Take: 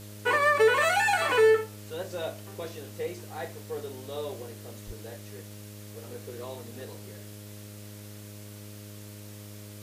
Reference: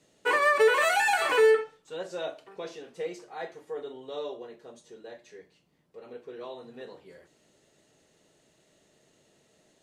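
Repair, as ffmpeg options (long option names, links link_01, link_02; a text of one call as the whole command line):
ffmpeg -i in.wav -filter_complex "[0:a]bandreject=frequency=103.5:width_type=h:width=4,bandreject=frequency=207:width_type=h:width=4,bandreject=frequency=310.5:width_type=h:width=4,bandreject=frequency=414:width_type=h:width=4,bandreject=frequency=517.5:width_type=h:width=4,bandreject=frequency=621:width_type=h:width=4,asplit=3[link_01][link_02][link_03];[link_01]afade=type=out:start_time=4.86:duration=0.02[link_04];[link_02]highpass=frequency=140:width=0.5412,highpass=frequency=140:width=1.3066,afade=type=in:start_time=4.86:duration=0.02,afade=type=out:start_time=4.98:duration=0.02[link_05];[link_03]afade=type=in:start_time=4.98:duration=0.02[link_06];[link_04][link_05][link_06]amix=inputs=3:normalize=0,afwtdn=0.0032" out.wav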